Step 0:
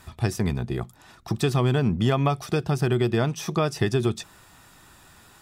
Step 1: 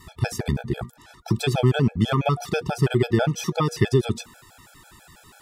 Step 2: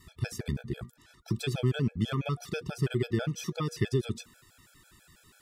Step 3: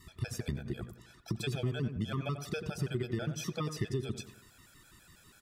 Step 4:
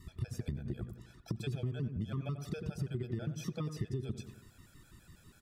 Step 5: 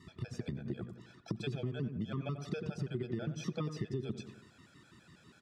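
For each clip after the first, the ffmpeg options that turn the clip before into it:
-af "bandreject=f=238.4:t=h:w=4,bandreject=f=476.8:t=h:w=4,bandreject=f=715.2:t=h:w=4,bandreject=f=953.6:t=h:w=4,bandreject=f=1.192k:t=h:w=4,bandreject=f=1.4304k:t=h:w=4,bandreject=f=1.6688k:t=h:w=4,bandreject=f=1.9072k:t=h:w=4,afftfilt=real='re*gt(sin(2*PI*6.1*pts/sr)*(1-2*mod(floor(b*sr/1024/440),2)),0)':imag='im*gt(sin(2*PI*6.1*pts/sr)*(1-2*mod(floor(b*sr/1024/440),2)),0)':win_size=1024:overlap=0.75,volume=5dB"
-af "equalizer=f=800:t=o:w=0.73:g=-12.5,volume=-8dB"
-filter_complex "[0:a]acompressor=threshold=-32dB:ratio=3,asplit=2[a][b];[b]adelay=91,lowpass=f=1.8k:p=1,volume=-9.5dB,asplit=2[c][d];[d]adelay=91,lowpass=f=1.8k:p=1,volume=0.43,asplit=2[e][f];[f]adelay=91,lowpass=f=1.8k:p=1,volume=0.43,asplit=2[g][h];[h]adelay=91,lowpass=f=1.8k:p=1,volume=0.43,asplit=2[i][j];[j]adelay=91,lowpass=f=1.8k:p=1,volume=0.43[k];[a][c][e][g][i][k]amix=inputs=6:normalize=0"
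-af "lowshelf=f=390:g=11,acompressor=threshold=-30dB:ratio=3,volume=-5dB"
-af "highpass=160,lowpass=5.4k,volume=3dB"

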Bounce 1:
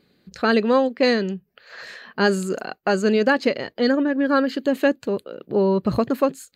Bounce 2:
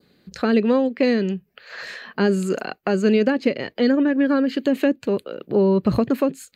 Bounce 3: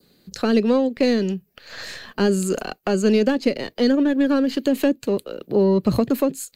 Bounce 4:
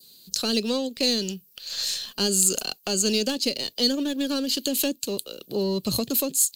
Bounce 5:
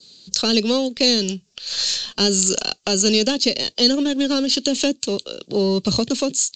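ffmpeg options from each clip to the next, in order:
-filter_complex "[0:a]adynamicequalizer=threshold=0.01:dfrequency=2400:dqfactor=1.8:tfrequency=2400:tqfactor=1.8:attack=5:release=100:ratio=0.375:range=3.5:mode=boostabove:tftype=bell,acrossover=split=470[a][b];[b]acompressor=threshold=-29dB:ratio=6[c];[a][c]amix=inputs=2:normalize=0,volume=3dB"
-filter_complex "[0:a]highshelf=f=4.8k:g=11.5,acrossover=split=310|1200|3200[a][b][c][d];[c]aeval=exprs='max(val(0),0)':c=same[e];[a][b][e][d]amix=inputs=4:normalize=0"
-af "aexciter=amount=4.9:drive=9.2:freq=2.9k,volume=-8.5dB"
-af "acontrast=29,volume=1.5dB" -ar 16000 -c:a pcm_mulaw

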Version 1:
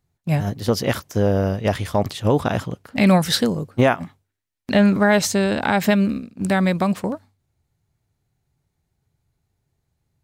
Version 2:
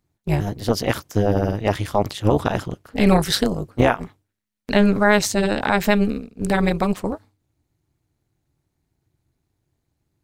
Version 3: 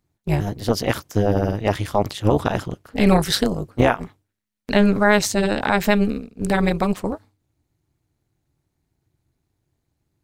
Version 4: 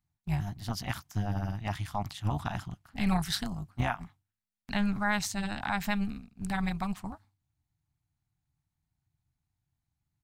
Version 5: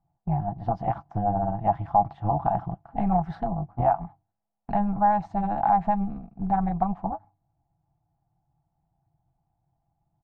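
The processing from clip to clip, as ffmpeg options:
-af "tremolo=f=210:d=0.824,volume=3dB"
-af anull
-af "firequalizer=gain_entry='entry(160,0);entry(470,-24);entry(730,-2)':delay=0.05:min_phase=1,volume=-9dB"
-af "aecho=1:1:6:0.44,acompressor=threshold=-36dB:ratio=2,lowpass=f=760:t=q:w=5.5,volume=7.5dB"

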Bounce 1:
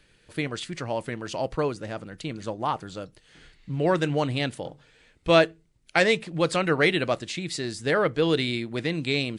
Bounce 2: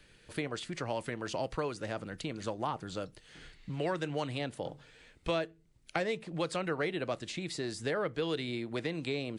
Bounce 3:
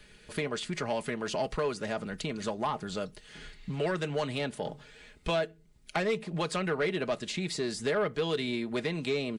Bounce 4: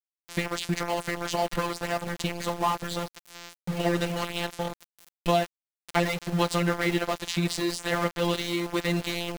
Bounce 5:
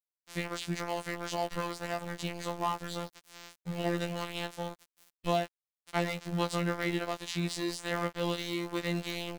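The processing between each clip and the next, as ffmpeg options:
-filter_complex "[0:a]acrossover=split=430|1100[a][b][c];[a]acompressor=threshold=-39dB:ratio=4[d];[b]acompressor=threshold=-37dB:ratio=4[e];[c]acompressor=threshold=-41dB:ratio=4[f];[d][e][f]amix=inputs=3:normalize=0"
-af "aecho=1:1:4.8:0.49,asoftclip=type=tanh:threshold=-25dB,volume=4dB"
-af "afftfilt=real='hypot(re,im)*cos(PI*b)':imag='0':win_size=1024:overlap=0.75,aeval=exprs='val(0)*gte(abs(val(0)),0.0106)':c=same,volume=8.5dB"
-af "afftfilt=real='hypot(re,im)*cos(PI*b)':imag='0':win_size=2048:overlap=0.75,volume=-5.5dB"

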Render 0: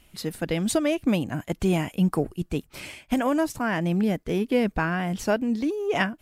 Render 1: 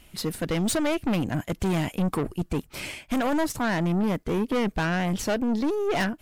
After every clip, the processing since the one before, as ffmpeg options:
-af "aeval=exprs='(tanh(22.4*val(0)+0.4)-tanh(0.4))/22.4':c=same,volume=5.5dB"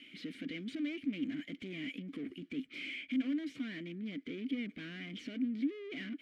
-filter_complex "[0:a]asplit=2[a][b];[b]highpass=f=720:p=1,volume=28dB,asoftclip=type=tanh:threshold=-18.5dB[c];[a][c]amix=inputs=2:normalize=0,lowpass=f=3.1k:p=1,volume=-6dB,asplit=3[d][e][f];[d]bandpass=f=270:t=q:w=8,volume=0dB[g];[e]bandpass=f=2.29k:t=q:w=8,volume=-6dB[h];[f]bandpass=f=3.01k:t=q:w=8,volume=-9dB[i];[g][h][i]amix=inputs=3:normalize=0,volume=-4.5dB"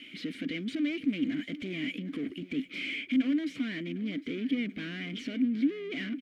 -af "aecho=1:1:755|1510|2265:0.133|0.0413|0.0128,volume=7dB"

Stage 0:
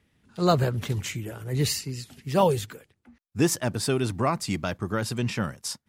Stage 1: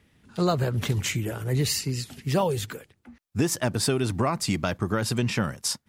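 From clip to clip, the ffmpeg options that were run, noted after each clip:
-af "acompressor=threshold=-26dB:ratio=6,volume=5.5dB"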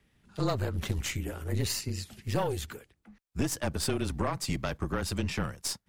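-af "afreqshift=-29,aeval=exprs='(tanh(7.08*val(0)+0.65)-tanh(0.65))/7.08':c=same,volume=-2.5dB"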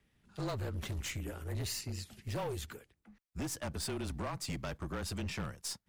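-af "asoftclip=type=hard:threshold=-28dB,volume=-5dB"

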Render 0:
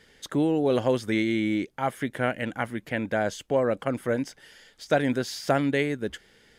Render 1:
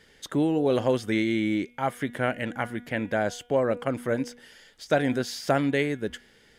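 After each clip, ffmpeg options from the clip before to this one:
-af "bandreject=f=241.7:t=h:w=4,bandreject=f=483.4:t=h:w=4,bandreject=f=725.1:t=h:w=4,bandreject=f=966.8:t=h:w=4,bandreject=f=1.2085k:t=h:w=4,bandreject=f=1.4502k:t=h:w=4,bandreject=f=1.6919k:t=h:w=4,bandreject=f=1.9336k:t=h:w=4,bandreject=f=2.1753k:t=h:w=4,bandreject=f=2.417k:t=h:w=4,bandreject=f=2.6587k:t=h:w=4,bandreject=f=2.9004k:t=h:w=4,bandreject=f=3.1421k:t=h:w=4,bandreject=f=3.3838k:t=h:w=4,bandreject=f=3.6255k:t=h:w=4"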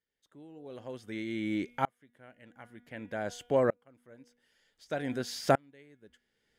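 -af "aeval=exprs='val(0)*pow(10,-36*if(lt(mod(-0.54*n/s,1),2*abs(-0.54)/1000),1-mod(-0.54*n/s,1)/(2*abs(-0.54)/1000),(mod(-0.54*n/s,1)-2*abs(-0.54)/1000)/(1-2*abs(-0.54)/1000))/20)':c=same"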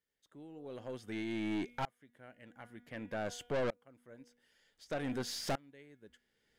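-af "aeval=exprs='(tanh(35.5*val(0)+0.25)-tanh(0.25))/35.5':c=same"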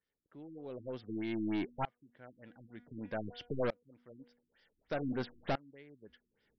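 -af "afftfilt=real='re*lt(b*sr/1024,350*pow(6100/350,0.5+0.5*sin(2*PI*3.3*pts/sr)))':imag='im*lt(b*sr/1024,350*pow(6100/350,0.5+0.5*sin(2*PI*3.3*pts/sr)))':win_size=1024:overlap=0.75,volume=1.5dB"

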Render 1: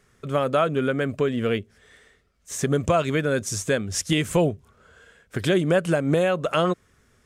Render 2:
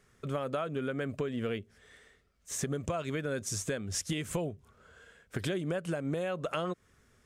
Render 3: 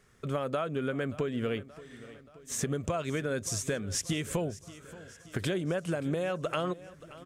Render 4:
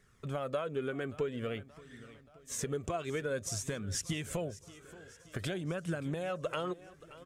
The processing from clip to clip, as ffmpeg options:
-af "acompressor=threshold=-26dB:ratio=6,volume=-4.5dB"
-af "aecho=1:1:578|1156|1734|2312|2890:0.126|0.073|0.0424|0.0246|0.0142,volume=2dB"
-af "flanger=delay=0.5:depth=2.3:regen=45:speed=0.51:shape=triangular"

